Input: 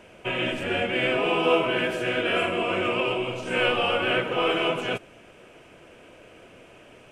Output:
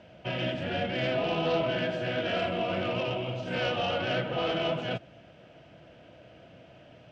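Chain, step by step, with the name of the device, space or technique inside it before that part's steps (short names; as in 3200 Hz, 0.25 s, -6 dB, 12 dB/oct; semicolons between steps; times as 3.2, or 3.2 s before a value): guitar amplifier (tube stage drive 18 dB, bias 0.3; tone controls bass +11 dB, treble +8 dB; speaker cabinet 80–4400 Hz, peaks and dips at 92 Hz -4 dB, 230 Hz -4 dB, 400 Hz -8 dB, 650 Hz +7 dB, 1100 Hz -6 dB, 2400 Hz -6 dB); gain -4 dB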